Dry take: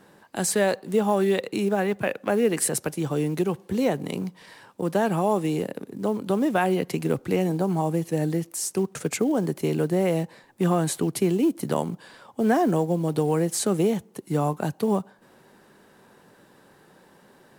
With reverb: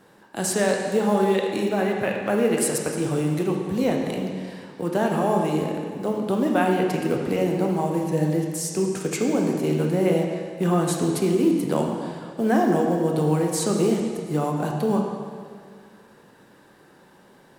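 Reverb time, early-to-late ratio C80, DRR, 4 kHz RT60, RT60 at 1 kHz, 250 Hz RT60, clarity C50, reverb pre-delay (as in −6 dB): 2.0 s, 4.0 dB, 0.5 dB, 1.9 s, 2.0 s, 2.0 s, 2.5 dB, 7 ms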